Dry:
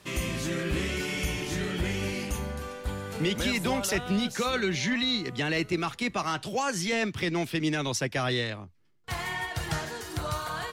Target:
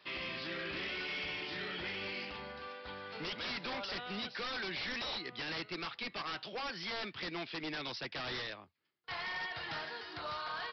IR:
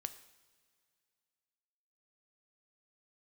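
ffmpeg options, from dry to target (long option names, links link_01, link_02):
-af "highpass=frequency=920:poles=1,aresample=11025,aeval=exprs='0.0282*(abs(mod(val(0)/0.0282+3,4)-2)-1)':channel_layout=same,aresample=44100,volume=-3dB"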